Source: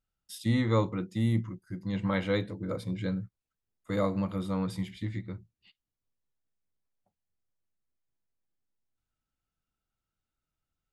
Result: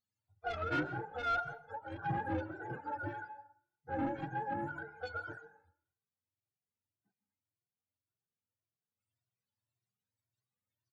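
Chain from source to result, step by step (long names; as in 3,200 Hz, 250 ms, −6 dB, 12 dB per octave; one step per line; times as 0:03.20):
frequency axis turned over on the octave scale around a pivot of 400 Hz
0:04.53–0:05.32: EQ curve with evenly spaced ripples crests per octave 1.8, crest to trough 14 dB
soft clipping −26.5 dBFS, distortion −12 dB
on a send at −14.5 dB: convolution reverb RT60 0.60 s, pre-delay 122 ms
on the sum: barber-pole flanger 2 ms +1.8 Hz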